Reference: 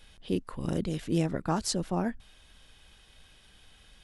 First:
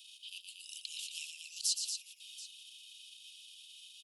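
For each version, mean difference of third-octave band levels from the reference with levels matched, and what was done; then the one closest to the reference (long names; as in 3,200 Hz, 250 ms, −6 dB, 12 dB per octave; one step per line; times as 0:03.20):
20.0 dB: transient designer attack −8 dB, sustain +4 dB
Butterworth high-pass 2,600 Hz 96 dB per octave
multi-tap delay 119/232/731 ms −7/−7.5/−20 dB
in parallel at −2.5 dB: downward compressor, threshold −53 dBFS, peak gain reduction 21 dB
on the sum: level +1 dB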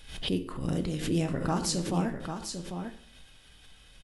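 6.0 dB: parametric band 680 Hz −2.5 dB 2.5 octaves
on a send: single-tap delay 797 ms −7.5 dB
on the sum: dense smooth reverb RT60 0.58 s, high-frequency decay 0.8×, DRR 6 dB
background raised ahead of every attack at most 76 dB per second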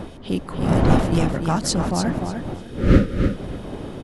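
10.0 dB: wind on the microphone 380 Hz −29 dBFS
gain on a spectral selection 0:02.53–0:03.27, 600–1,200 Hz −18 dB
dynamic equaliser 400 Hz, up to −6 dB, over −39 dBFS, Q 2.2
on a send: repeating echo 298 ms, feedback 21%, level −6.5 dB
on the sum: level +7.5 dB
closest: second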